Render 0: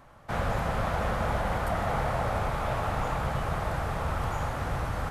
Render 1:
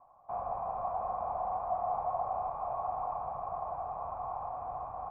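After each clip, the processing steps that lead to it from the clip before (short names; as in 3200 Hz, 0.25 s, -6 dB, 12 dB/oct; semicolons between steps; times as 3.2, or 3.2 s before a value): vocal tract filter a; high shelf 3500 Hz -9 dB; gain +5 dB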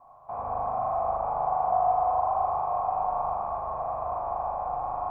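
in parallel at -2.5 dB: compressor, threshold -42 dBFS, peak gain reduction 13 dB; on the sum: spring tank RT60 2.3 s, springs 39 ms, chirp 30 ms, DRR -4 dB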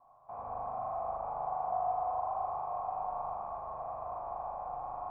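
bell 65 Hz -7 dB 0.42 oct; gain -9 dB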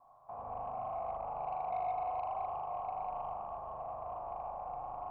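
soft clip -26.5 dBFS, distortion -22 dB; dynamic EQ 1500 Hz, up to -4 dB, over -48 dBFS, Q 0.81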